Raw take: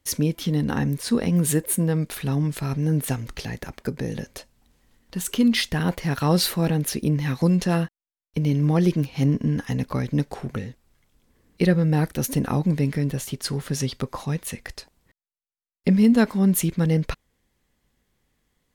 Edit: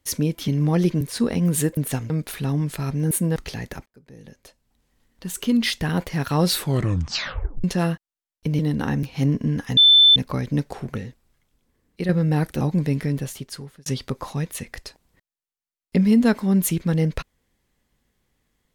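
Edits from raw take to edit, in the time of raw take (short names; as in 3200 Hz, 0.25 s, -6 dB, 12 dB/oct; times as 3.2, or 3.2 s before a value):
0.48–0.92 swap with 8.5–9.03
1.68–1.93 swap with 2.94–3.27
3.77–5.67 fade in
6.42 tape stop 1.13 s
9.77 add tone 3530 Hz -9 dBFS 0.39 s
10.66–11.7 fade out quadratic, to -7 dB
12.22–12.53 cut
13.06–13.78 fade out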